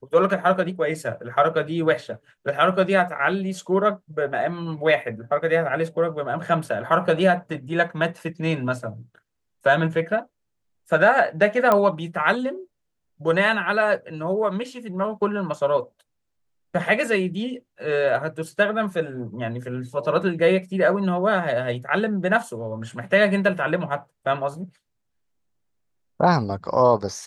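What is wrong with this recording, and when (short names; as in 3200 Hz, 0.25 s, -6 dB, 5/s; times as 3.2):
11.72 pop -7 dBFS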